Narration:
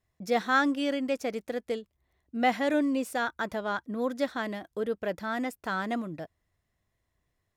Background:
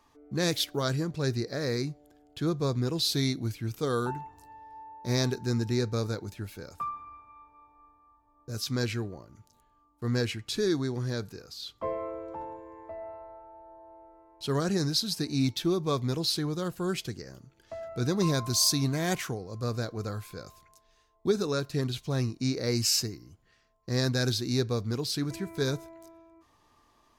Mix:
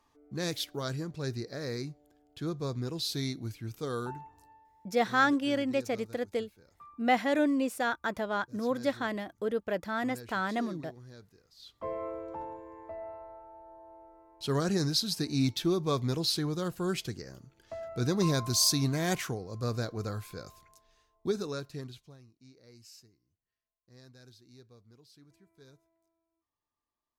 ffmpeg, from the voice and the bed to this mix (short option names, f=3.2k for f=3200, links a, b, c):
-filter_complex "[0:a]adelay=4650,volume=-0.5dB[a];[1:a]volume=11.5dB,afade=t=out:st=4.41:d=0.32:silence=0.237137,afade=t=in:st=11.53:d=0.54:silence=0.133352,afade=t=out:st=20.8:d=1.38:silence=0.0446684[b];[a][b]amix=inputs=2:normalize=0"